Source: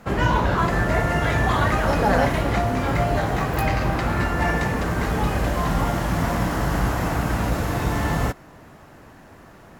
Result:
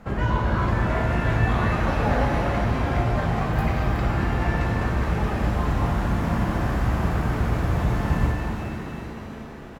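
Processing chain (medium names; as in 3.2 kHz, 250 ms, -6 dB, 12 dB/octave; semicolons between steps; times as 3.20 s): treble shelf 4.1 kHz -9 dB; frequency-shifting echo 371 ms, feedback 54%, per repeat +54 Hz, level -10 dB; in parallel at 0 dB: compression, threshold -34 dBFS, peak gain reduction 17.5 dB; on the sum: bass shelf 81 Hz +9 dB; pitch-shifted reverb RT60 2.7 s, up +7 st, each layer -8 dB, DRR 2 dB; trim -8 dB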